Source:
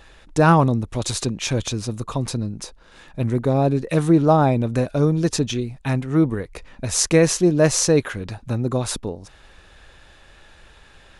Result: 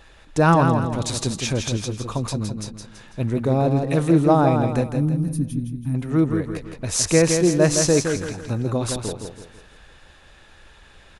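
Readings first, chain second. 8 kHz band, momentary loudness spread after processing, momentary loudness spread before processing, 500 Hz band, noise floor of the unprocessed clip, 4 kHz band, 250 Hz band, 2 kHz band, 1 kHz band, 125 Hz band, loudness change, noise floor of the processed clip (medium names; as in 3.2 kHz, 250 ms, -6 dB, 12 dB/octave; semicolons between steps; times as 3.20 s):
-0.5 dB, 13 LU, 14 LU, -0.5 dB, -50 dBFS, -1.0 dB, -0.5 dB, -0.5 dB, -0.5 dB, -0.5 dB, -1.0 dB, -50 dBFS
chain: time-frequency box 4.84–5.95 s, 310–8800 Hz -21 dB; feedback delay 165 ms, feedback 40%, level -6 dB; trim -1.5 dB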